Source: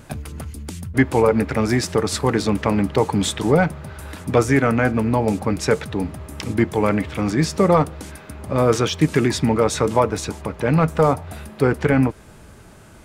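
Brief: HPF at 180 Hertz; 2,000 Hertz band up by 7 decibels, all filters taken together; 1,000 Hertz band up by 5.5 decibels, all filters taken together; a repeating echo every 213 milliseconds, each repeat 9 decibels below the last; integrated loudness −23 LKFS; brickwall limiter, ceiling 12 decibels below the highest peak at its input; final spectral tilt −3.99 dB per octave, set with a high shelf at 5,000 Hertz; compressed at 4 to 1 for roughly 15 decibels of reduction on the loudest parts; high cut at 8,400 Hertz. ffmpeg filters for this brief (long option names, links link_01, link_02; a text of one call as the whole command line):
ffmpeg -i in.wav -af "highpass=180,lowpass=8400,equalizer=frequency=1000:width_type=o:gain=5,equalizer=frequency=2000:width_type=o:gain=6.5,highshelf=frequency=5000:gain=4.5,acompressor=threshold=-27dB:ratio=4,alimiter=limit=-22.5dB:level=0:latency=1,aecho=1:1:213|426|639|852:0.355|0.124|0.0435|0.0152,volume=10dB" out.wav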